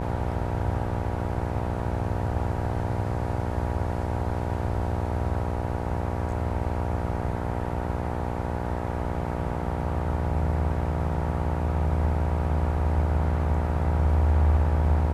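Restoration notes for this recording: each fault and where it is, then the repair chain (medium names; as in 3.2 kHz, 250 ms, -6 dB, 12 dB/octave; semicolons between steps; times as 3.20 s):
buzz 60 Hz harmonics 16 -31 dBFS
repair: de-hum 60 Hz, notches 16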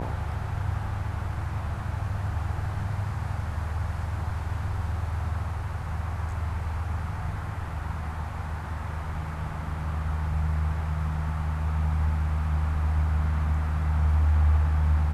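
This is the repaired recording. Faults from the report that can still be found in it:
nothing left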